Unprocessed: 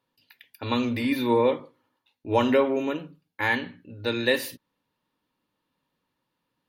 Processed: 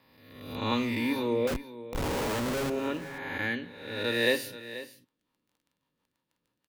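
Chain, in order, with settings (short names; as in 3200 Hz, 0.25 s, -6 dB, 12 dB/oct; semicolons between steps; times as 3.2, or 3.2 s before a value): spectral swells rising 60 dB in 1.10 s; crackle 11/s -48 dBFS; rotary speaker horn 0.9 Hz, later 6.3 Hz, at 4.72; 1.47–2.7 Schmitt trigger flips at -31.5 dBFS; on a send: echo 0.484 s -14.5 dB; on the sum: gain -4 dB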